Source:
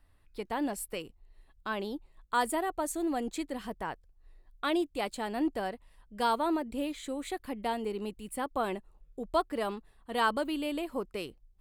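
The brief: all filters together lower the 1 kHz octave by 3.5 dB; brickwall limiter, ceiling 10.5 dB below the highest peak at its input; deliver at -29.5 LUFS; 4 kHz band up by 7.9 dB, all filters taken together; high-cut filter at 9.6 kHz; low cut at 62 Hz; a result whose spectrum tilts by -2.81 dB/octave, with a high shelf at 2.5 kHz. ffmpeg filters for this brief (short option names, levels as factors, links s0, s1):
-af "highpass=62,lowpass=9600,equalizer=f=1000:t=o:g=-5.5,highshelf=f=2500:g=5,equalizer=f=4000:t=o:g=6.5,volume=2.11,alimiter=limit=0.126:level=0:latency=1"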